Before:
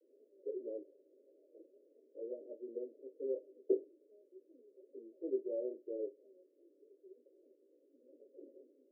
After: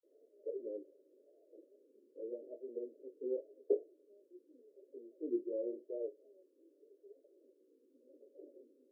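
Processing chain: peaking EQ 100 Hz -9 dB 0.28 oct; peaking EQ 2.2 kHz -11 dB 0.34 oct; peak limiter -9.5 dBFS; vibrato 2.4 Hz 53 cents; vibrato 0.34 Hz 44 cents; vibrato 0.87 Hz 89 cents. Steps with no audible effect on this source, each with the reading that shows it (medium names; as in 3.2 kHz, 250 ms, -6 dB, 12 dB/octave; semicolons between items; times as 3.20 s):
peaking EQ 100 Hz: input has nothing below 230 Hz; peaking EQ 2.2 kHz: input has nothing above 640 Hz; peak limiter -9.5 dBFS: peak at its input -21.5 dBFS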